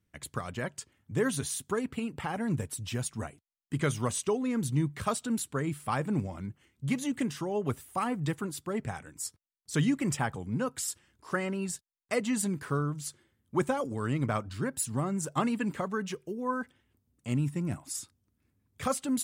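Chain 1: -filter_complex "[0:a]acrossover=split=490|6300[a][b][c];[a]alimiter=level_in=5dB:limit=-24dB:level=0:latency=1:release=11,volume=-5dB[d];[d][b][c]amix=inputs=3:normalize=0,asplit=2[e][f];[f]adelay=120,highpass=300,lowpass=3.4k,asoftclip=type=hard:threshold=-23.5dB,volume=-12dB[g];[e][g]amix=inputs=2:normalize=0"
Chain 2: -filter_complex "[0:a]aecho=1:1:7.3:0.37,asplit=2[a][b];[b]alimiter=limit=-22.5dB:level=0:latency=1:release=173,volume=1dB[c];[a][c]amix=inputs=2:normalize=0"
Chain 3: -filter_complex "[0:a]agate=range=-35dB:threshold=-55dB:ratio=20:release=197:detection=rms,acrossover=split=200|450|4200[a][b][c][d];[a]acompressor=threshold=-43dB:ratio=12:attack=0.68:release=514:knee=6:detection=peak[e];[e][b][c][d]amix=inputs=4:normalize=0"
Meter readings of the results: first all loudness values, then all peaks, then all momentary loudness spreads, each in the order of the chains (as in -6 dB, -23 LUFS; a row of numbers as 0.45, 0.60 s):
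-34.5, -26.5, -34.0 LUFS; -15.5, -11.0, -15.5 dBFS; 7, 8, 8 LU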